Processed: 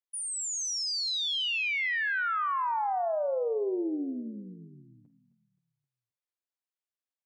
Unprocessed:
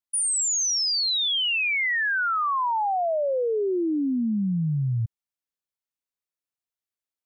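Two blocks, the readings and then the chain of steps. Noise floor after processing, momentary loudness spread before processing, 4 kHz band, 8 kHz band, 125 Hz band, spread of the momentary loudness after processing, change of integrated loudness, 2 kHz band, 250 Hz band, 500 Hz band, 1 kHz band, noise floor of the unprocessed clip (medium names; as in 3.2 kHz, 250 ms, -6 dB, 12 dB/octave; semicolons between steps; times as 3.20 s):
under -85 dBFS, 5 LU, -6.5 dB, no reading, -26.0 dB, 8 LU, -6.0 dB, -5.5 dB, -10.0 dB, -5.0 dB, -5.0 dB, under -85 dBFS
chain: high-pass 290 Hz 24 dB/octave; treble shelf 7.4 kHz -9.5 dB; doubling 48 ms -14 dB; on a send: feedback delay 263 ms, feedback 50%, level -17 dB; on the sum: trim -5 dB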